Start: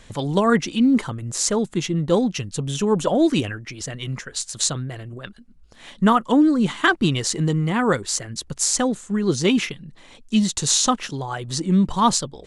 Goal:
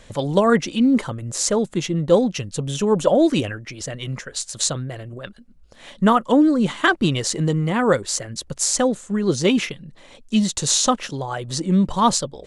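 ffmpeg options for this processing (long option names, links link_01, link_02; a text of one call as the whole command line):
ffmpeg -i in.wav -af "equalizer=frequency=560:width_type=o:width=0.45:gain=7" out.wav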